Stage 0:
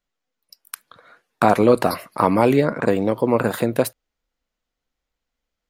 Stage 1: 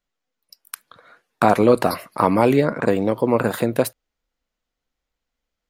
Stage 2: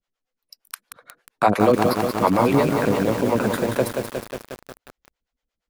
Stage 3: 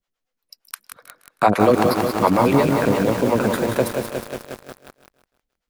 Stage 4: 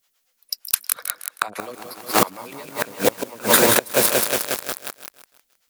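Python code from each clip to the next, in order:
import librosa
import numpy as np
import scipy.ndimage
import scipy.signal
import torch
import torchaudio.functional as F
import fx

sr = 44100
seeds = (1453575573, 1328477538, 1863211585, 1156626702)

y1 = x
y2 = fx.high_shelf(y1, sr, hz=9900.0, db=-5.5)
y2 = fx.harmonic_tremolo(y2, sr, hz=8.6, depth_pct=100, crossover_hz=430.0)
y2 = fx.echo_crushed(y2, sr, ms=180, feedback_pct=80, bits=6, wet_db=-5)
y2 = F.gain(torch.from_numpy(y2), 2.5).numpy()
y3 = fx.echo_feedback(y2, sr, ms=158, feedback_pct=38, wet_db=-12.0)
y3 = F.gain(torch.from_numpy(y3), 1.5).numpy()
y4 = fx.gate_flip(y3, sr, shuts_db=-8.0, range_db=-27)
y4 = fx.tilt_eq(y4, sr, slope=3.5)
y4 = fx.fold_sine(y4, sr, drive_db=9, ceiling_db=0.0)
y4 = F.gain(torch.from_numpy(y4), -4.0).numpy()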